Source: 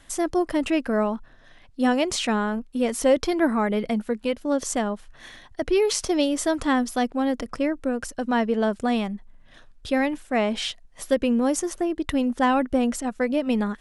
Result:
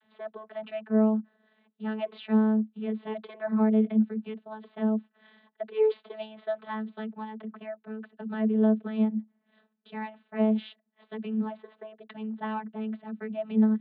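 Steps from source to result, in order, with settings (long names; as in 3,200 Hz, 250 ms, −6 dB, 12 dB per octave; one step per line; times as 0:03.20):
Chebyshev low-pass filter 4,000 Hz, order 10
channel vocoder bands 32, saw 217 Hz
level −3.5 dB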